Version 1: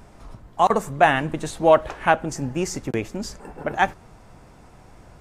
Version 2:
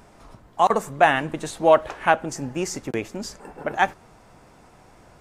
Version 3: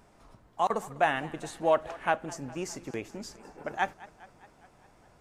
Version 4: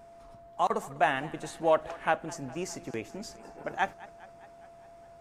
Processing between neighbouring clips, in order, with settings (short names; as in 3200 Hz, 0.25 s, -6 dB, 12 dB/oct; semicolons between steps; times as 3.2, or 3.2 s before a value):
low shelf 150 Hz -9 dB
warbling echo 0.204 s, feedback 64%, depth 130 cents, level -20 dB; gain -9 dB
whine 680 Hz -50 dBFS